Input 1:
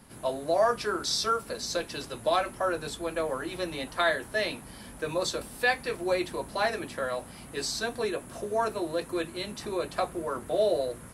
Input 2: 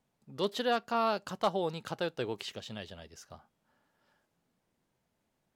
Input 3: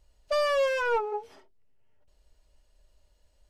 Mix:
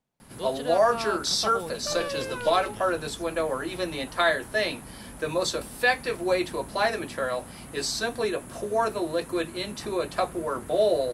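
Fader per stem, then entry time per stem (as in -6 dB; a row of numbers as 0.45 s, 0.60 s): +3.0 dB, -4.0 dB, -8.0 dB; 0.20 s, 0.00 s, 1.55 s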